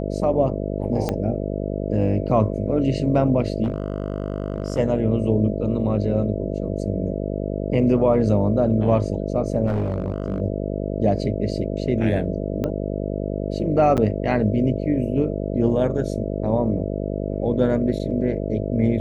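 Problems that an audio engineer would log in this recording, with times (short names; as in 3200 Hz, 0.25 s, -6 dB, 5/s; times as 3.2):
buzz 50 Hz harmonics 13 -26 dBFS
1.09 pop -10 dBFS
3.63–4.79 clipped -18 dBFS
9.66–10.4 clipped -18 dBFS
12.64 pop -14 dBFS
13.97–13.98 gap 8 ms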